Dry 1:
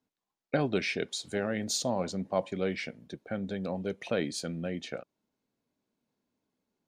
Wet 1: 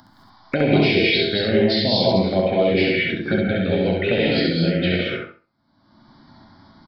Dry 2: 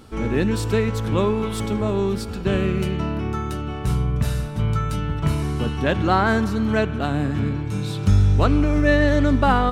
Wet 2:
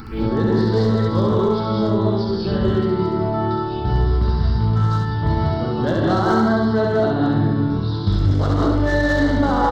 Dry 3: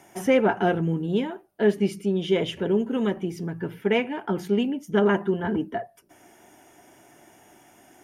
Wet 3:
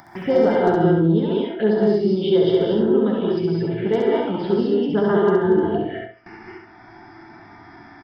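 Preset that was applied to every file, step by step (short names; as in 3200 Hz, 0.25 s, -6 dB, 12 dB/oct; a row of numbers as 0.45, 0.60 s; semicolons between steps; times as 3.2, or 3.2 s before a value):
rattling part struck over -15 dBFS, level -22 dBFS; high shelf 2100 Hz +3 dB; downsampling 11025 Hz; gate with hold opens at -41 dBFS; resonator 110 Hz, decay 0.22 s, harmonics all, mix 60%; upward compressor, threshold -27 dBFS; non-linear reverb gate 0.24 s rising, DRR -2 dB; hard clip -13.5 dBFS; envelope phaser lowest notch 440 Hz, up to 2500 Hz, full sweep at -22 dBFS; feedback echo 67 ms, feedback 25%, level -3 dB; maximiser +11.5 dB; match loudness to -19 LUFS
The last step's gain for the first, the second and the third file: +0.5, -7.5, -6.0 dB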